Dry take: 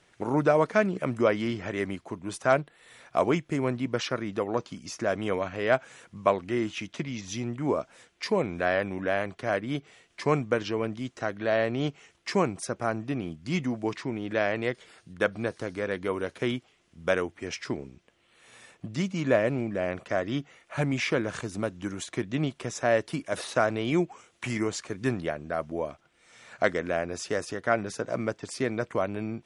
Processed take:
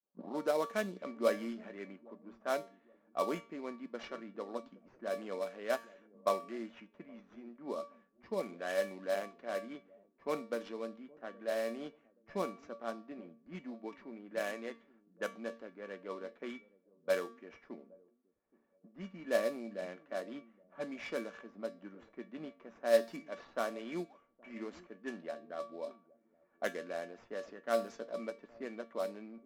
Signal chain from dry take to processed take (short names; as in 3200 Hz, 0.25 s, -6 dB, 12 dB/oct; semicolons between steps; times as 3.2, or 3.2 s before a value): tape start at the beginning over 0.34 s; brick-wall FIR band-pass 170–7700 Hz; resonator 570 Hz, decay 0.24 s, harmonics all, mix 80%; in parallel at -4.5 dB: sample-rate reducer 4600 Hz, jitter 20%; on the sum: resonator 230 Hz, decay 0.55 s, harmonics all, mix 60%; on a send: dark delay 0.822 s, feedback 35%, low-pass 480 Hz, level -16 dB; on the sum: low-pass opened by the level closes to 950 Hz, open at -36 dBFS; three-band expander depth 40%; gain +3 dB